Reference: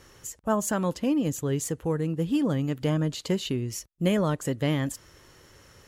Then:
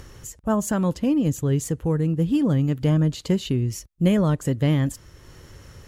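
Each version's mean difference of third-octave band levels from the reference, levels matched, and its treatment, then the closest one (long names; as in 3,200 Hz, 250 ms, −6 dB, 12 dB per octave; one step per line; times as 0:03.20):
3.5 dB: upward compression, threshold −44 dBFS
low-shelf EQ 200 Hz +12 dB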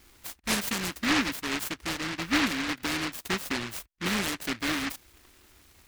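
11.5 dB: phaser with its sweep stopped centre 530 Hz, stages 6
short delay modulated by noise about 1,800 Hz, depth 0.5 ms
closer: first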